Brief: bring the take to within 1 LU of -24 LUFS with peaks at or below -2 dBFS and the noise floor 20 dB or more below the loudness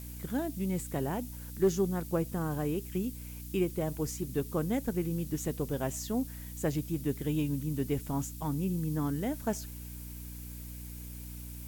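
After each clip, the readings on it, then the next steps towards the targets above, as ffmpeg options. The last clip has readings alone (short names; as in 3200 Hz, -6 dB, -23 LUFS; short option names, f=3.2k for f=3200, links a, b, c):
hum 60 Hz; harmonics up to 300 Hz; hum level -41 dBFS; noise floor -43 dBFS; noise floor target -54 dBFS; loudness -34.0 LUFS; peak -17.5 dBFS; loudness target -24.0 LUFS
-> -af "bandreject=f=60:t=h:w=6,bandreject=f=120:t=h:w=6,bandreject=f=180:t=h:w=6,bandreject=f=240:t=h:w=6,bandreject=f=300:t=h:w=6"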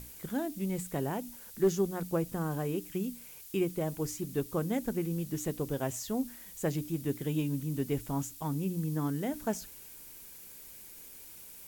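hum none; noise floor -50 dBFS; noise floor target -54 dBFS
-> -af "afftdn=nr=6:nf=-50"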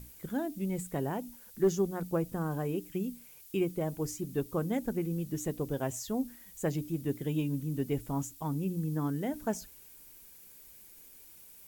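noise floor -54 dBFS; loudness -34.0 LUFS; peak -17.5 dBFS; loudness target -24.0 LUFS
-> -af "volume=10dB"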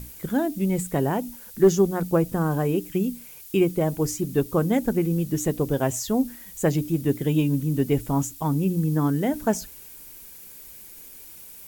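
loudness -24.0 LUFS; peak -7.5 dBFS; noise floor -44 dBFS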